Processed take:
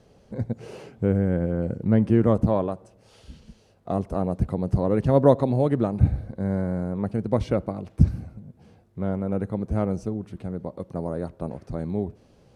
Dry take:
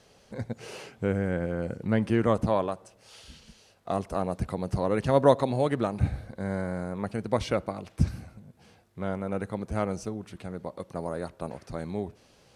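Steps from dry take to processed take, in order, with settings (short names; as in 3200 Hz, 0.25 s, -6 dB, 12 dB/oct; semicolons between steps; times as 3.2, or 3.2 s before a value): tilt shelf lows +7.5 dB, about 780 Hz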